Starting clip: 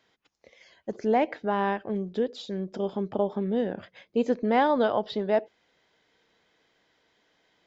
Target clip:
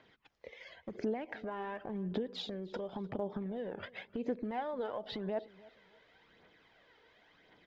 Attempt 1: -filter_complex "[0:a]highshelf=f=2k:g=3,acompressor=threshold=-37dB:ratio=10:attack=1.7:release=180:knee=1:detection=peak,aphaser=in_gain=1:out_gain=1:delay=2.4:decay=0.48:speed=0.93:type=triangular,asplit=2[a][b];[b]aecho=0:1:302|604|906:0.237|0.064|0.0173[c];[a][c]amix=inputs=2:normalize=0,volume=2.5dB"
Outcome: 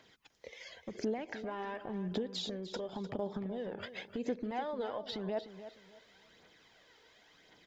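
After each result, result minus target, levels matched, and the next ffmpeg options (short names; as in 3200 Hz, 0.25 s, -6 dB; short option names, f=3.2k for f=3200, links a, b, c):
echo-to-direct +9 dB; 4000 Hz band +3.0 dB
-filter_complex "[0:a]highshelf=f=2k:g=3,acompressor=threshold=-37dB:ratio=10:attack=1.7:release=180:knee=1:detection=peak,aphaser=in_gain=1:out_gain=1:delay=2.4:decay=0.48:speed=0.93:type=triangular,asplit=2[a][b];[b]aecho=0:1:302|604:0.0841|0.0227[c];[a][c]amix=inputs=2:normalize=0,volume=2.5dB"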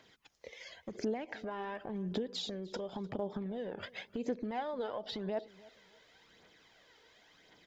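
4000 Hz band +3.0 dB
-filter_complex "[0:a]lowpass=2.9k,highshelf=f=2k:g=3,acompressor=threshold=-37dB:ratio=10:attack=1.7:release=180:knee=1:detection=peak,aphaser=in_gain=1:out_gain=1:delay=2.4:decay=0.48:speed=0.93:type=triangular,asplit=2[a][b];[b]aecho=0:1:302|604:0.0841|0.0227[c];[a][c]amix=inputs=2:normalize=0,volume=2.5dB"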